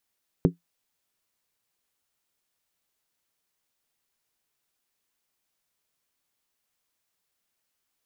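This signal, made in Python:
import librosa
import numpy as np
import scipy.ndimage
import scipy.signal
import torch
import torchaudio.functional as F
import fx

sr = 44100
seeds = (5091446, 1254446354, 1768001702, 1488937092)

y = fx.strike_skin(sr, length_s=0.63, level_db=-13.5, hz=171.0, decay_s=0.14, tilt_db=3.0, modes=5)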